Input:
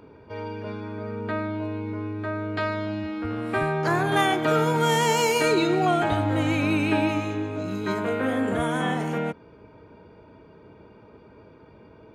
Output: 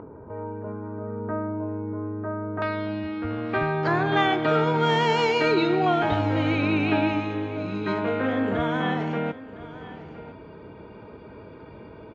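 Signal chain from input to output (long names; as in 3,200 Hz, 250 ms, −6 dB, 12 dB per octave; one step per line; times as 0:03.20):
low-pass filter 1,300 Hz 24 dB per octave, from 0:02.62 4,500 Hz
upward compression, threshold −35 dBFS
single-tap delay 1,009 ms −16.5 dB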